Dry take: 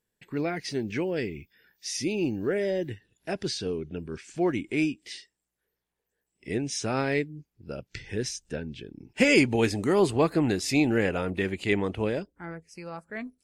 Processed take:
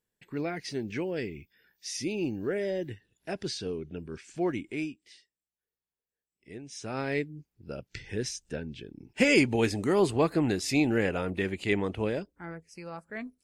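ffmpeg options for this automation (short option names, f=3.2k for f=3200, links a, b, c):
-af "volume=8.5dB,afade=t=out:st=4.51:d=0.55:silence=0.298538,afade=t=in:st=6.67:d=0.61:silence=0.251189"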